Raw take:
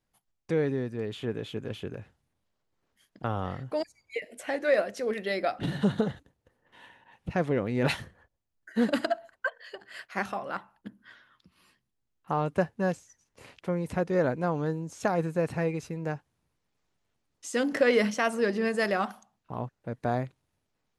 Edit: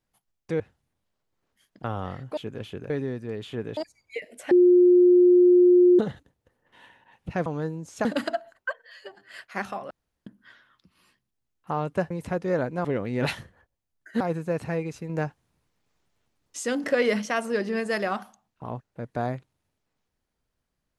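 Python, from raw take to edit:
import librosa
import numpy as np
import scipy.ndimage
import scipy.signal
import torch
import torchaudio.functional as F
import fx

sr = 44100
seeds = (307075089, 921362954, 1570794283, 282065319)

y = fx.edit(x, sr, fx.swap(start_s=0.6, length_s=0.87, other_s=2.0, other_length_s=1.77),
    fx.bleep(start_s=4.51, length_s=1.48, hz=357.0, db=-12.5),
    fx.swap(start_s=7.46, length_s=1.36, other_s=14.5, other_length_s=0.59),
    fx.stretch_span(start_s=9.56, length_s=0.33, factor=1.5),
    fx.room_tone_fill(start_s=10.51, length_s=0.36),
    fx.cut(start_s=12.71, length_s=1.05),
    fx.clip_gain(start_s=15.98, length_s=1.56, db=4.5), tone=tone)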